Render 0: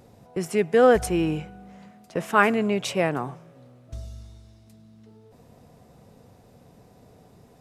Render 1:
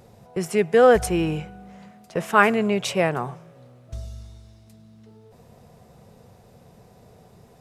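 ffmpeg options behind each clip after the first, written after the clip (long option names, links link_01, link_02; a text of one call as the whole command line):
ffmpeg -i in.wav -af "equalizer=frequency=280:width=7.5:gain=-14,volume=2.5dB" out.wav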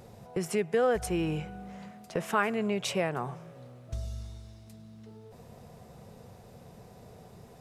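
ffmpeg -i in.wav -af "acompressor=threshold=-32dB:ratio=2" out.wav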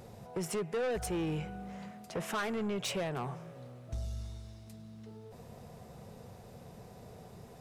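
ffmpeg -i in.wav -af "asoftclip=type=tanh:threshold=-30dB" out.wav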